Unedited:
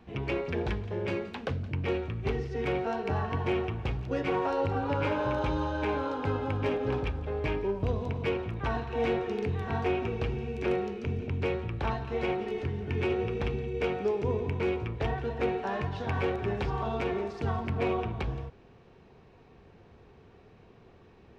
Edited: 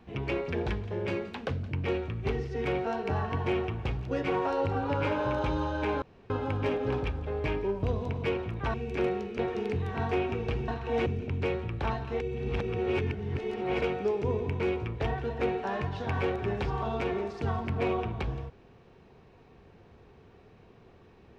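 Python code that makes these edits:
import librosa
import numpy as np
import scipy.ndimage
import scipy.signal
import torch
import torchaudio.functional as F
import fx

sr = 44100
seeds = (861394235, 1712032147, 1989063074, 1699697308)

y = fx.edit(x, sr, fx.room_tone_fill(start_s=6.02, length_s=0.28),
    fx.swap(start_s=8.74, length_s=0.38, other_s=10.41, other_length_s=0.65),
    fx.reverse_span(start_s=12.2, length_s=1.62), tone=tone)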